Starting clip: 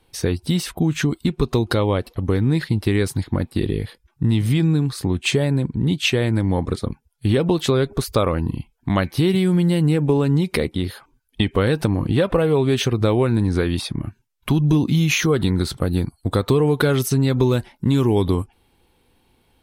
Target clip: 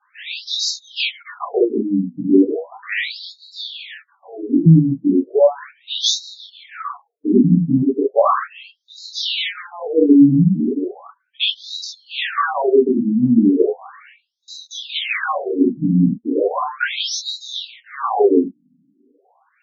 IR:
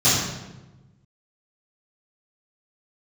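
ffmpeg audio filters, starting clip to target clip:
-filter_complex "[0:a]asplit=2[link_01][link_02];[link_02]highpass=frequency=720:poles=1,volume=13dB,asoftclip=type=tanh:threshold=-4dB[link_03];[link_01][link_03]amix=inputs=2:normalize=0,lowpass=frequency=3100:poles=1,volume=-6dB[link_04];[1:a]atrim=start_sample=2205,atrim=end_sample=3969[link_05];[link_04][link_05]afir=irnorm=-1:irlink=0,afftfilt=real='re*between(b*sr/1024,210*pow(5300/210,0.5+0.5*sin(2*PI*0.36*pts/sr))/1.41,210*pow(5300/210,0.5+0.5*sin(2*PI*0.36*pts/sr))*1.41)':imag='im*between(b*sr/1024,210*pow(5300/210,0.5+0.5*sin(2*PI*0.36*pts/sr))/1.41,210*pow(5300/210,0.5+0.5*sin(2*PI*0.36*pts/sr))*1.41)':win_size=1024:overlap=0.75,volume=-11dB"

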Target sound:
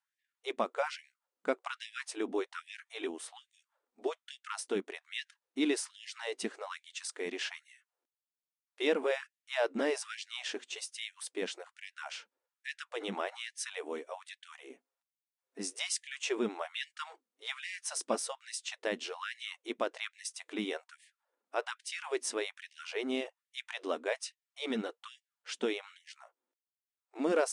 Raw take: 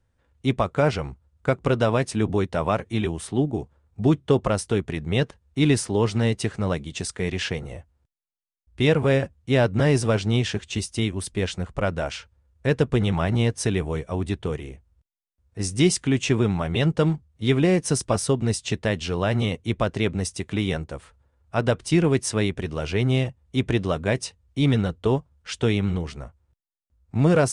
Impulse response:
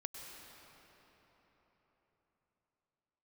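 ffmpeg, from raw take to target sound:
-filter_complex "[0:a]asettb=1/sr,asplit=3[link_01][link_02][link_03];[link_01]atrim=end=14.694[link_04];[link_02]atrim=start=14.69:end=15.6,asetpts=PTS-STARTPTS,afade=type=in:duration=0.004:curve=qsin,afade=type=out:start_time=0.906:duration=0.004:curve=qsin,aecho=1:1:7.3:0.77,atrim=end_sample=40131[link_05];[link_03]atrim=start=15.596[link_06];[link_04][link_05]acrossfade=duration=0.004:curve1=hsin:curve2=qsin[link_07];[link_07][link_06]acrossfade=duration=0.004:curve1=qsin:curve2=hsin,afftfilt=real='re*gte(b*sr/1024,210*pow(1700/210,0.5+0.5*sin(2*PI*1.2*pts/sr)))':imag='im*gte(b*sr/1024,210*pow(1700/210,0.5+0.5*sin(2*PI*1.2*pts/sr)))':win_size=1024:overlap=0.75,volume=-8.5dB"

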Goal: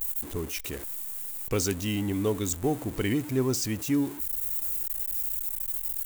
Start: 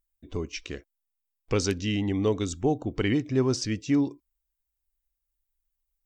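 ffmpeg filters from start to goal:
ffmpeg -i in.wav -af "aeval=exprs='val(0)+0.5*0.0178*sgn(val(0))':channel_layout=same,aexciter=amount=5.9:drive=2.4:freq=7300,volume=-3dB" out.wav

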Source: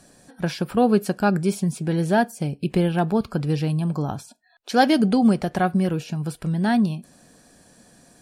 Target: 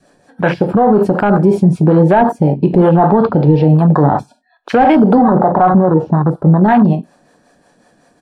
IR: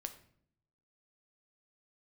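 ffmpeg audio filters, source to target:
-filter_complex "[0:a]asettb=1/sr,asplit=3[link_01][link_02][link_03];[link_01]atrim=end=3.064[link_04];[link_02]atrim=start=3.06:end=3.64,asetpts=PTS-STARTPTS,afade=type=in:duration=0.004:curve=qsin,afade=type=out:start_time=0.576:duration=0.004:curve=qsin,lowpass=frequency=3800:width_type=q:width=1.8[link_05];[link_03]atrim=start=3.636[link_06];[link_04][link_05]acrossfade=duration=0.004:curve1=hsin:curve2=qsin[link_07];[link_07][link_06]acrossfade=duration=0.004:curve1=qsin:curve2=hsin[link_08];[1:a]atrim=start_sample=2205,afade=type=out:start_time=0.13:duration=0.01,atrim=end_sample=6174[link_09];[link_08][link_09]afir=irnorm=-1:irlink=0,asplit=2[link_10][link_11];[link_11]highpass=frequency=720:poles=1,volume=15dB,asoftclip=type=tanh:threshold=-10dB[link_12];[link_10][link_12]amix=inputs=2:normalize=0,lowpass=frequency=1000:poles=1,volume=-6dB,asettb=1/sr,asplit=3[link_13][link_14][link_15];[link_13]atrim=end=5.224[link_16];[link_14]atrim=start=5.22:end=6.63,asetpts=PTS-STARTPTS,afade=type=in:duration=0.004:curve=qsin,afade=type=out:start_time=1.406:duration=0.004:curve=qsin,highshelf=frequency=1600:width_type=q:width=3:gain=-12[link_17];[link_15]atrim=start=6.626[link_18];[link_16][link_17]acrossfade=duration=0.004:curve1=hsin:curve2=qsin[link_19];[link_19][link_18]acrossfade=duration=0.004:curve1=qsin:curve2=hsin,asplit=2[link_20][link_21];[link_21]adelay=93.29,volume=-22dB,highshelf=frequency=4000:gain=-2.1[link_22];[link_20][link_22]amix=inputs=2:normalize=0,acrossover=split=420[link_23][link_24];[link_23]aeval=exprs='val(0)*(1-0.5/2+0.5/2*cos(2*PI*5.4*n/s))':channel_layout=same[link_25];[link_24]aeval=exprs='val(0)*(1-0.5/2-0.5/2*cos(2*PI*5.4*n/s))':channel_layout=same[link_26];[link_25][link_26]amix=inputs=2:normalize=0,afwtdn=0.02,adynamicequalizer=threshold=0.0112:dfrequency=900:dqfactor=3.1:tfrequency=900:tqfactor=3.1:attack=5:release=100:ratio=0.375:range=3:mode=boostabove:tftype=bell,alimiter=level_in=22dB:limit=-1dB:release=50:level=0:latency=1,volume=-1dB"

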